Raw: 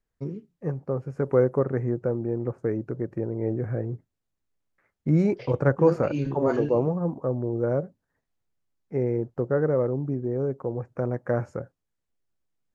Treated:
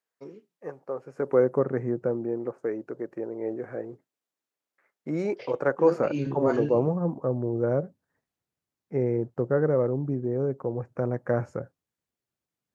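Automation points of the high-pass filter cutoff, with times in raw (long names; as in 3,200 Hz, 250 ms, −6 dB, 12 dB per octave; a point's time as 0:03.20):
0:00.92 500 Hz
0:01.56 160 Hz
0:02.08 160 Hz
0:02.60 360 Hz
0:05.75 360 Hz
0:06.49 87 Hz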